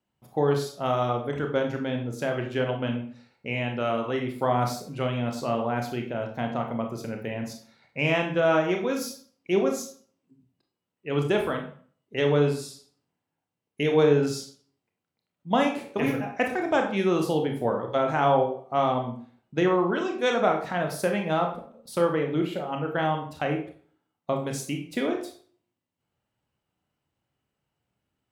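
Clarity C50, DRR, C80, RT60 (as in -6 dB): 7.5 dB, 2.5 dB, 11.5 dB, 0.45 s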